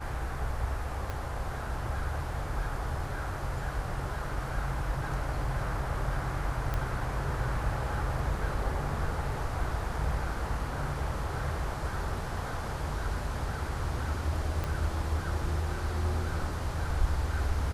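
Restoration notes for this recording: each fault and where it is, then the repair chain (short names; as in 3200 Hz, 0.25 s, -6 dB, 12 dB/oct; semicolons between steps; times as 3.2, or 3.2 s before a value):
1.1 pop -22 dBFS
6.74 pop -19 dBFS
14.64 pop -19 dBFS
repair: de-click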